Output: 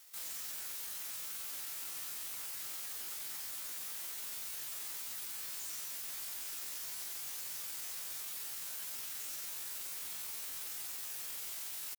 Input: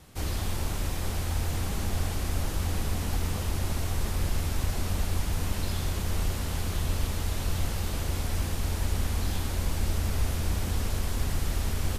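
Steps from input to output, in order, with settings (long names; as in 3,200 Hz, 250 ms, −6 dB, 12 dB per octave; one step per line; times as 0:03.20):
high-pass filter 760 Hz 6 dB per octave
spectral tilt +4 dB per octave
pitch shifter +9 semitones
soft clipping −30.5 dBFS, distortion −12 dB
level −7.5 dB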